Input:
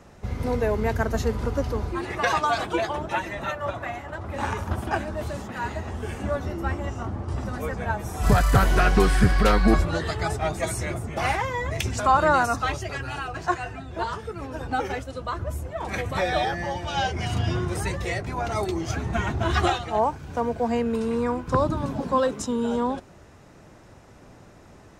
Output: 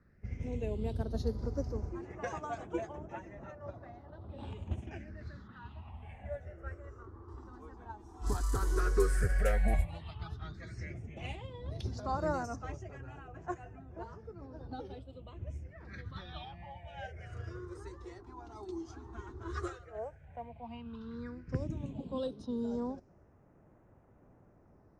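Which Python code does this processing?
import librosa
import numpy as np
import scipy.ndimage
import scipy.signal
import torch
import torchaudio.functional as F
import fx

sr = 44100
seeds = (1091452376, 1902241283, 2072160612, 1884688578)

y = fx.phaser_stages(x, sr, stages=6, low_hz=150.0, high_hz=3900.0, hz=0.094, feedback_pct=40)
y = fx.dynamic_eq(y, sr, hz=1100.0, q=1.1, threshold_db=-40.0, ratio=4.0, max_db=-6)
y = fx.env_lowpass(y, sr, base_hz=2200.0, full_db=-16.5)
y = fx.upward_expand(y, sr, threshold_db=-31.0, expansion=1.5)
y = y * librosa.db_to_amplitude(-7.0)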